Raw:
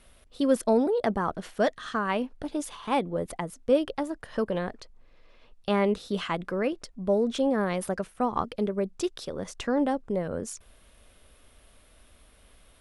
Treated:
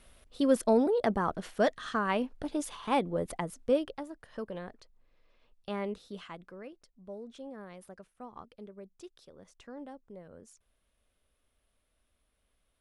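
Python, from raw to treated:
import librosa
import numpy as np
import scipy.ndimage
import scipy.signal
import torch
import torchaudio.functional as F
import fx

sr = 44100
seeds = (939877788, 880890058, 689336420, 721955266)

y = fx.gain(x, sr, db=fx.line((3.61, -2.0), (4.06, -11.0), (5.88, -11.0), (6.74, -19.5)))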